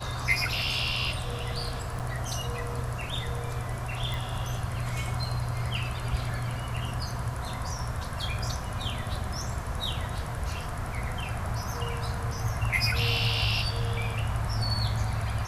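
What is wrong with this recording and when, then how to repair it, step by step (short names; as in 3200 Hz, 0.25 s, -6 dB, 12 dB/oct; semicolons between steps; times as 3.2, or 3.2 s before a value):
1.99–2 gap 7.9 ms
4.14 pop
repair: de-click; interpolate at 1.99, 7.9 ms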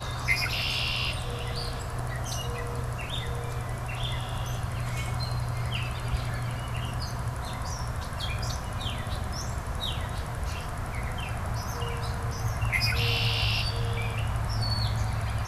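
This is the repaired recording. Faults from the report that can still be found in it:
none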